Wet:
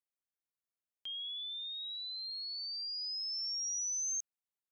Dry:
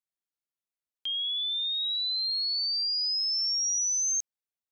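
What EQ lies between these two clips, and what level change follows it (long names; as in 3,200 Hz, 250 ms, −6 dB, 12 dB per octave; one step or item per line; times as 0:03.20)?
parametric band 4,100 Hz −7 dB 1 octave
−5.5 dB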